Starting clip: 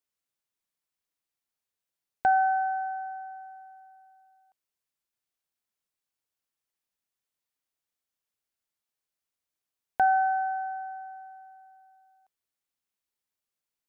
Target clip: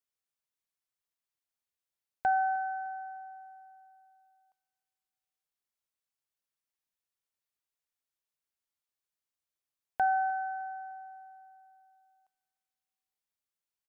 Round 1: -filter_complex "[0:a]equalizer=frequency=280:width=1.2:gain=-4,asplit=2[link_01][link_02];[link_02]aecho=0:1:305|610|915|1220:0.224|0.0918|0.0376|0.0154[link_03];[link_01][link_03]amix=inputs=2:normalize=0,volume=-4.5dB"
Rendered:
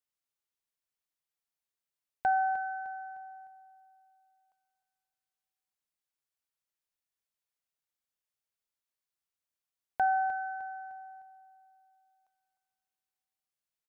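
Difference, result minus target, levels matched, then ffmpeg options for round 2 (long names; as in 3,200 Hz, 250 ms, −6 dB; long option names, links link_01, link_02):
echo-to-direct +8 dB
-filter_complex "[0:a]equalizer=frequency=280:width=1.2:gain=-4,asplit=2[link_01][link_02];[link_02]aecho=0:1:305|610|915:0.0891|0.0365|0.015[link_03];[link_01][link_03]amix=inputs=2:normalize=0,volume=-4.5dB"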